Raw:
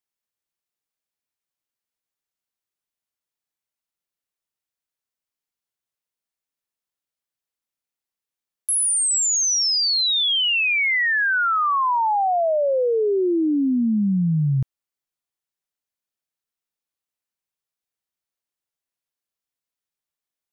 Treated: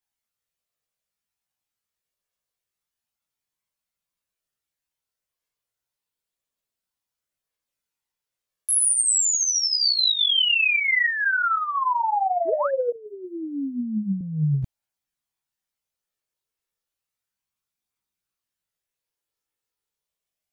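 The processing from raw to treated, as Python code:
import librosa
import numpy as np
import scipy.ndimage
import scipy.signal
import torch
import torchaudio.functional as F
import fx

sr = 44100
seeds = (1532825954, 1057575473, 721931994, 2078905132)

y = fx.chorus_voices(x, sr, voices=4, hz=0.16, base_ms=17, depth_ms=1.2, mix_pct=55)
y = fx.spec_paint(y, sr, seeds[0], shape='rise', start_s=12.45, length_s=0.26, low_hz=300.0, high_hz=1800.0, level_db=-30.0)
y = fx.over_compress(y, sr, threshold_db=-24.0, ratio=-0.5)
y = fx.cheby1_bandstop(y, sr, low_hz=180.0, high_hz=8000.0, order=2, at=(12.92, 14.21))
y = y * librosa.db_to_amplitude(3.0)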